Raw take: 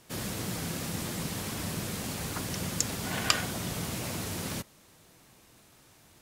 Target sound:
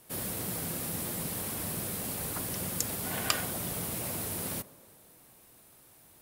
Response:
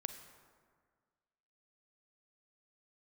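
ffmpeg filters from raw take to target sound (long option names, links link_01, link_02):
-filter_complex "[0:a]aexciter=amount=3.9:drive=4.7:freq=8900,asplit=2[link_01][link_02];[link_02]equalizer=frequency=570:width_type=o:width=2.4:gain=12.5[link_03];[1:a]atrim=start_sample=2205,asetrate=43218,aresample=44100[link_04];[link_03][link_04]afir=irnorm=-1:irlink=0,volume=-11.5dB[link_05];[link_01][link_05]amix=inputs=2:normalize=0,volume=-6dB"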